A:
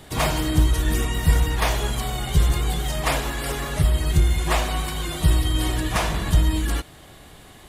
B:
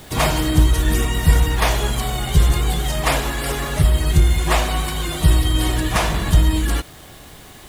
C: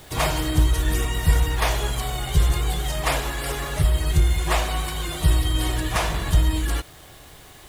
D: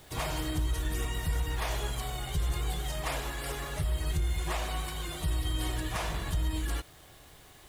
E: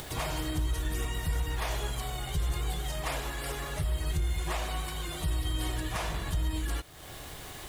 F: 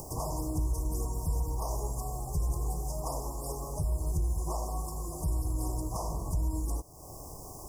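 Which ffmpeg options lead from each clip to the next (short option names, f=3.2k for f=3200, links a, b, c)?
-af "acrusher=bits=7:mix=0:aa=0.000001,volume=4dB"
-af "equalizer=f=220:t=o:w=0.67:g=-7,volume=-4dB"
-af "alimiter=limit=-13.5dB:level=0:latency=1:release=70,volume=-8.5dB"
-af "acompressor=mode=upward:threshold=-32dB:ratio=2.5"
-af "asuperstop=centerf=2400:order=20:qfactor=0.61"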